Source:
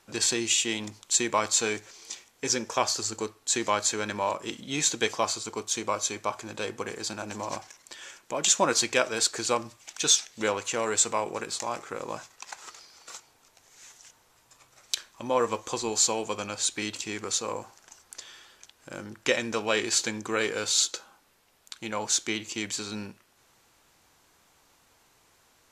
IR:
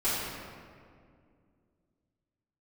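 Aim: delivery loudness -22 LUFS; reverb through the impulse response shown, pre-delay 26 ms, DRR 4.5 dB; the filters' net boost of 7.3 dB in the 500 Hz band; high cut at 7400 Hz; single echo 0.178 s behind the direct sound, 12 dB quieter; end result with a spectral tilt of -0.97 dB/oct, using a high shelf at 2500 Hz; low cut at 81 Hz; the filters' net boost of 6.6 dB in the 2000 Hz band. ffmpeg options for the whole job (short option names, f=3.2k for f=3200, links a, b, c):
-filter_complex "[0:a]highpass=81,lowpass=7.4k,equalizer=f=500:t=o:g=8,equalizer=f=2k:t=o:g=5.5,highshelf=f=2.5k:g=5,aecho=1:1:178:0.251,asplit=2[a][b];[1:a]atrim=start_sample=2205,adelay=26[c];[b][c]afir=irnorm=-1:irlink=0,volume=-15dB[d];[a][d]amix=inputs=2:normalize=0"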